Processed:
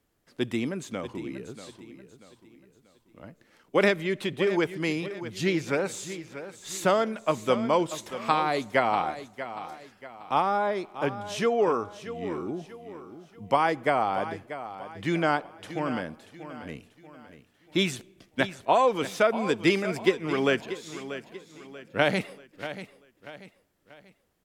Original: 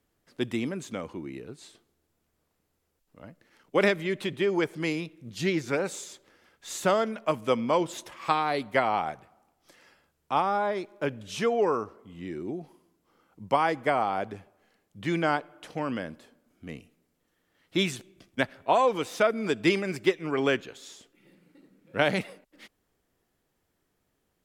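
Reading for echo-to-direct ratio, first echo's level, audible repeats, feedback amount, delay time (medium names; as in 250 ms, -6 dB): -12.0 dB, -12.5 dB, 3, 39%, 637 ms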